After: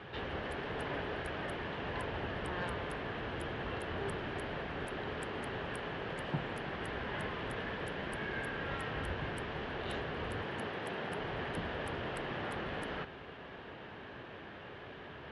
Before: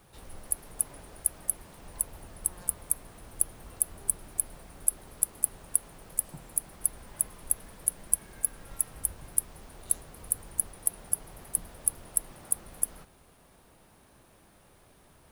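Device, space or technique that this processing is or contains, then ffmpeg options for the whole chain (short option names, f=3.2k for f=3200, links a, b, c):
guitar cabinet: -filter_complex "[0:a]highpass=89,equalizer=f=180:t=q:w=4:g=-3,equalizer=f=420:t=q:w=4:g=5,equalizer=f=1.7k:t=q:w=4:g=8,equalizer=f=3k:t=q:w=4:g=6,lowpass=f=3.4k:w=0.5412,lowpass=f=3.4k:w=1.3066,asettb=1/sr,asplit=3[a][b][c];[a]atrim=end=10.444[d];[b]atrim=start=10.44:end=11.19,asetpts=PTS-STARTPTS,afade=t=in:d=0.004:c=qsin,afade=t=out:st=0.746:d=0.004:c=qsin,highpass=120[e];[c]atrim=start=11.186[f];[d][e]acrossfade=d=0.004:c1=hsin:c2=qsin[g];[g][f]acrossfade=d=0.004:c1=qsin:c2=hsin,volume=11dB"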